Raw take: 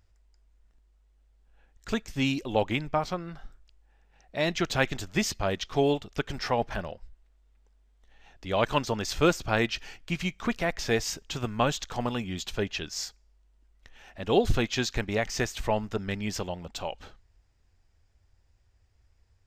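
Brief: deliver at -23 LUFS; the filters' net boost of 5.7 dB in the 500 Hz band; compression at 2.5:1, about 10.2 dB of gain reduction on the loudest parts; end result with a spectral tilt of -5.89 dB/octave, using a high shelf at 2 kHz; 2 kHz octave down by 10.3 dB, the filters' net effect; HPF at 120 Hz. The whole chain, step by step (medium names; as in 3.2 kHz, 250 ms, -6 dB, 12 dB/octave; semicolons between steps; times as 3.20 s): high-pass 120 Hz; peaking EQ 500 Hz +8 dB; treble shelf 2 kHz -9 dB; peaking EQ 2 kHz -8.5 dB; compression 2.5:1, threshold -29 dBFS; trim +10.5 dB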